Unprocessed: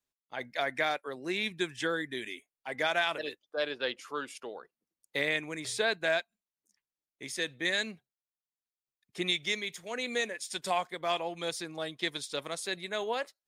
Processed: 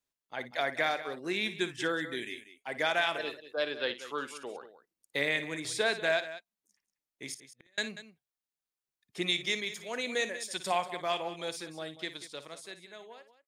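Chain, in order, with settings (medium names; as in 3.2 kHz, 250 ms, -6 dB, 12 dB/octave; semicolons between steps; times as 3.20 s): fade out at the end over 2.73 s; 7.34–7.78 s: inverted gate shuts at -34 dBFS, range -38 dB; multi-tap echo 57/189 ms -13/-14 dB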